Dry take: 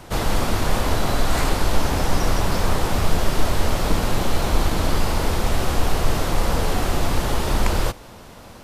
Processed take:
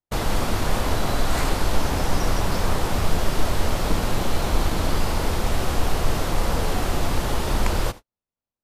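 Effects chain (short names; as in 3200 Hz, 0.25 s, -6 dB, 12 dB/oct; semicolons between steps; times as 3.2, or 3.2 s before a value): gate -29 dBFS, range -52 dB; gain -2 dB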